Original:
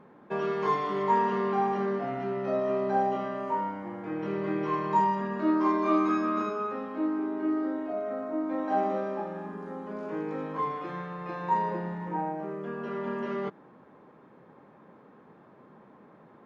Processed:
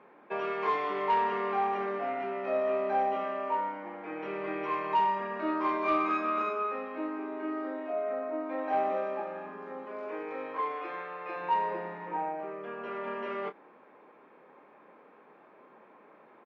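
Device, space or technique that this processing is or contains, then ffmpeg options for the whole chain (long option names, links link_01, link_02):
intercom: -filter_complex "[0:a]asettb=1/sr,asplit=3[link_01][link_02][link_03];[link_01]atrim=end=9.854[link_04];[link_02]atrim=start=9.85:end=11.36,asetpts=PTS-STARTPTS,afade=type=in:duration=0.004:curve=qsin,afade=type=out:start_time=1.506:duration=0.004:curve=qsin,highpass=260[link_05];[link_03]atrim=start=11.356[link_06];[link_04][link_05]acrossfade=duration=0.004:curve1=hsin:curve2=qsin[link_07];[link_07][link_06]acrossfade=duration=0.004:curve1=qsin:curve2=hsin,highpass=390,lowpass=3700,equalizer=frequency=2400:width_type=o:width=0.35:gain=8.5,asoftclip=type=tanh:threshold=-18dB,asplit=2[link_08][link_09];[link_09]adelay=27,volume=-10.5dB[link_10];[link_08][link_10]amix=inputs=2:normalize=0"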